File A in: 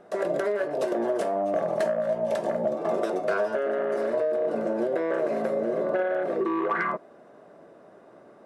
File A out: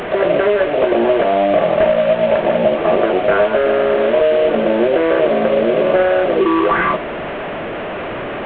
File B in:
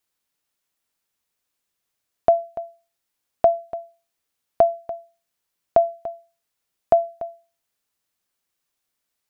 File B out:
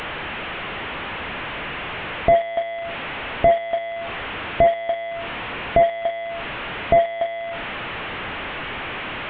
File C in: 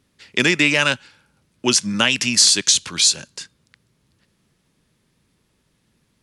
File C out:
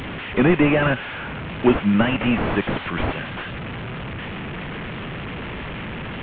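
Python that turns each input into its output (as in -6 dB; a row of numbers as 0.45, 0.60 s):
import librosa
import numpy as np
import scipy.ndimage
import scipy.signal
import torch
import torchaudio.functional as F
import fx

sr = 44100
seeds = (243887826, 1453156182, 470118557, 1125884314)

y = fx.delta_mod(x, sr, bps=16000, step_db=-30.5)
y = y * 10.0 ** (-3 / 20.0) / np.max(np.abs(y))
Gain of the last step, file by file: +12.5, +8.0, +6.5 dB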